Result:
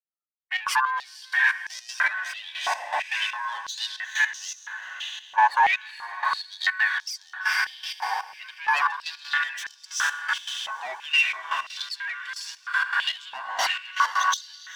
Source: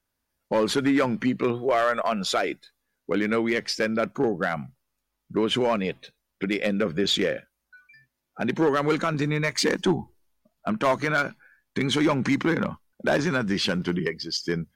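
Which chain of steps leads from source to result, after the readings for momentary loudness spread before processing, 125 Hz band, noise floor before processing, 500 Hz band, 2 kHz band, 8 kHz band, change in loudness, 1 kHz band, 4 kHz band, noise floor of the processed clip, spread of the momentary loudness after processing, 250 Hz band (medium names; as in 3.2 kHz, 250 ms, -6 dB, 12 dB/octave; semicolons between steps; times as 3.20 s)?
9 LU, under -40 dB, -80 dBFS, -21.5 dB, +6.5 dB, +2.5 dB, -0.5 dB, +4.5 dB, +1.0 dB, -53 dBFS, 12 LU, under -40 dB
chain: expander on every frequency bin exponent 1.5; waveshaping leveller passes 2; phaser 0.42 Hz, delay 3.9 ms, feedback 24%; on a send: echo that smears into a reverb 458 ms, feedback 60%, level -4.5 dB; on the sum: saturation -16.5 dBFS, distortion -16 dB; trance gate ".xx..x.xx...." 159 bpm -12 dB; ring modulator 1.3 kHz; step-sequenced high-pass 3 Hz 830–5600 Hz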